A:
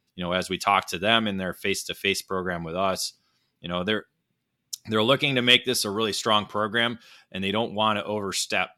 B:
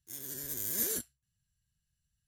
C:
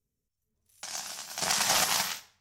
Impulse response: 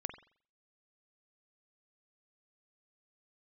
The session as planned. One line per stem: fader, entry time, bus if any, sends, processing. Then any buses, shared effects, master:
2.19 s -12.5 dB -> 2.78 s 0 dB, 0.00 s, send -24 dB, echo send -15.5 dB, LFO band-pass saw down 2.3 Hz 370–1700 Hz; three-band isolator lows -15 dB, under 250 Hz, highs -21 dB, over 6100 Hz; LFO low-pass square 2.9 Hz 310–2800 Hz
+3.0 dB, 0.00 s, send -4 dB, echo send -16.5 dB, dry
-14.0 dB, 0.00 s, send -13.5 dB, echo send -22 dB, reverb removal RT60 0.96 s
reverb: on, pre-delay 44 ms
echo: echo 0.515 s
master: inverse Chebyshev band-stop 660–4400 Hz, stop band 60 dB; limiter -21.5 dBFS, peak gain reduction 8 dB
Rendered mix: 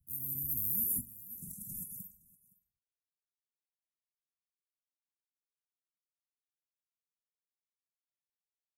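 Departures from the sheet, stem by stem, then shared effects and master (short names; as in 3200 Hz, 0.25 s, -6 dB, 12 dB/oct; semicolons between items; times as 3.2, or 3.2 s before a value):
stem A: muted; stem C -14.0 dB -> -5.0 dB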